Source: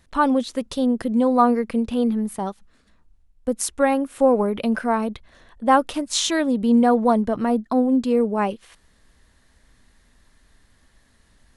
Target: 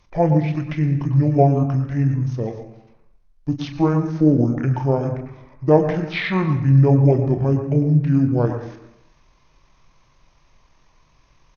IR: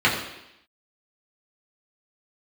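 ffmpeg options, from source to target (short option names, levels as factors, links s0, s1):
-filter_complex "[0:a]asplit=2[s0][s1];[1:a]atrim=start_sample=2205,adelay=104[s2];[s1][s2]afir=irnorm=-1:irlink=0,volume=0.0531[s3];[s0][s3]amix=inputs=2:normalize=0,acrossover=split=5500[s4][s5];[s5]acompressor=threshold=0.002:ratio=4:attack=1:release=60[s6];[s4][s6]amix=inputs=2:normalize=0,asplit=2[s7][s8];[s8]adelay=34,volume=0.355[s9];[s7][s9]amix=inputs=2:normalize=0,asetrate=25476,aresample=44100,atempo=1.73107,volume=1.12"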